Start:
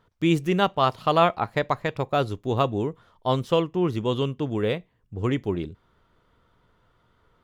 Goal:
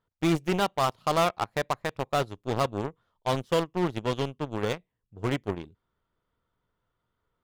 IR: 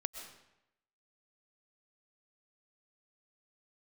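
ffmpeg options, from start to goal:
-af "volume=17dB,asoftclip=hard,volume=-17dB,aeval=exprs='0.15*(cos(1*acos(clip(val(0)/0.15,-1,1)))-cos(1*PI/2))+0.0422*(cos(3*acos(clip(val(0)/0.15,-1,1)))-cos(3*PI/2))+0.00119*(cos(5*acos(clip(val(0)/0.15,-1,1)))-cos(5*PI/2))':channel_layout=same,volume=-1.5dB"

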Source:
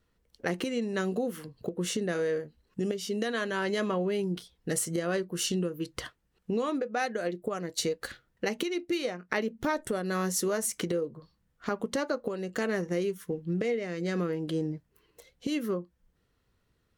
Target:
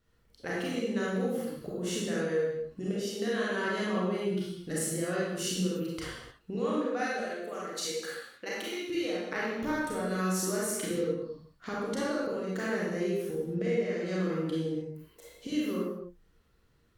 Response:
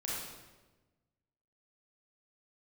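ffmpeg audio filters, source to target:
-filter_complex "[0:a]asettb=1/sr,asplit=3[link_01][link_02][link_03];[link_01]atrim=end=7.144[link_04];[link_02]atrim=start=7.14:end=8.86,asetpts=PTS-STARTPTS,afade=type=in:duration=0.004:curve=qsin,afade=type=out:start_time=1.716:duration=0.004:curve=qsin,highpass=frequency=680:poles=1[link_05];[link_03]atrim=start=8.856[link_06];[link_04][link_05]acrossfade=duration=0.004:curve1=hsin:curve2=qsin[link_07];[link_07][link_06]acrossfade=duration=0.004:curve1=qsin:curve2=hsin,asplit=2[link_08][link_09];[link_09]acompressor=threshold=-44dB:ratio=6,volume=2dB[link_10];[link_08][link_10]amix=inputs=2:normalize=0[link_11];[1:a]atrim=start_sample=2205,afade=type=out:start_time=0.37:duration=0.01,atrim=end_sample=16758[link_12];[link_11][link_12]afir=irnorm=-1:irlink=0,volume=-5.5dB"

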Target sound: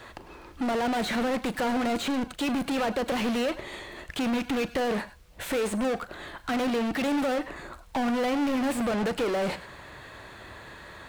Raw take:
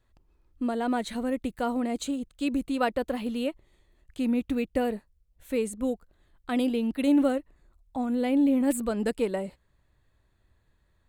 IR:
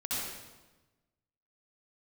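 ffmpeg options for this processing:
-filter_complex "[0:a]acrossover=split=670|3100[link_01][link_02][link_03];[link_01]acompressor=threshold=-31dB:ratio=4[link_04];[link_02]acompressor=threshold=-38dB:ratio=4[link_05];[link_03]acompressor=threshold=-49dB:ratio=4[link_06];[link_04][link_05][link_06]amix=inputs=3:normalize=0,asplit=2[link_07][link_08];[link_08]highpass=frequency=720:poles=1,volume=38dB,asoftclip=type=tanh:threshold=-24.5dB[link_09];[link_07][link_09]amix=inputs=2:normalize=0,lowpass=frequency=2600:poles=1,volume=-6dB,asplit=2[link_10][link_11];[1:a]atrim=start_sample=2205,atrim=end_sample=3087,adelay=38[link_12];[link_11][link_12]afir=irnorm=-1:irlink=0,volume=-12dB[link_13];[link_10][link_13]amix=inputs=2:normalize=0,volume=3dB"

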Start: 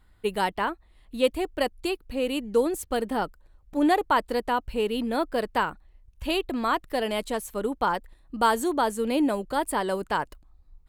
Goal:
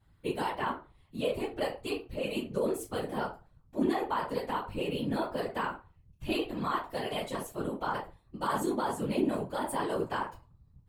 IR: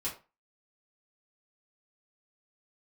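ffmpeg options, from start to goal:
-filter_complex "[1:a]atrim=start_sample=2205[link_01];[0:a][link_01]afir=irnorm=-1:irlink=0,alimiter=limit=-14.5dB:level=0:latency=1:release=25,afftfilt=real='hypot(re,im)*cos(2*PI*random(0))':imag='hypot(re,im)*sin(2*PI*random(1))':win_size=512:overlap=0.75,volume=-2dB"

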